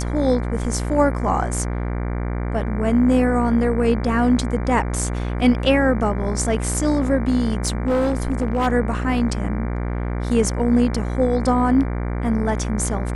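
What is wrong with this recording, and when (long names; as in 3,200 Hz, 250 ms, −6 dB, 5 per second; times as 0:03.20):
mains buzz 60 Hz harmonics 39 −24 dBFS
0:07.67–0:08.68: clipping −15.5 dBFS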